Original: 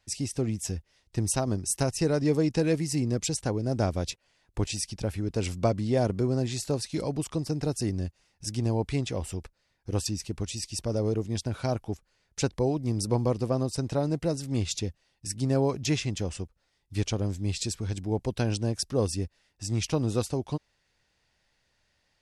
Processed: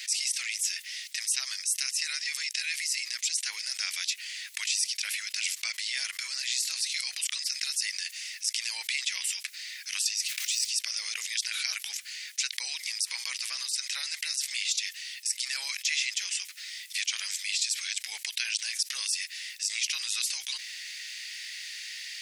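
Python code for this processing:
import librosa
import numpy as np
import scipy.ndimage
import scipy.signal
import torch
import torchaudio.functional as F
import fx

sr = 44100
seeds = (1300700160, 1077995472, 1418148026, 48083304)

y = fx.block_float(x, sr, bits=5, at=(10.26, 10.68), fade=0.02)
y = fx.rider(y, sr, range_db=10, speed_s=2.0)
y = scipy.signal.sosfilt(scipy.signal.cheby1(4, 1.0, 2000.0, 'highpass', fs=sr, output='sos'), y)
y = fx.env_flatten(y, sr, amount_pct=70)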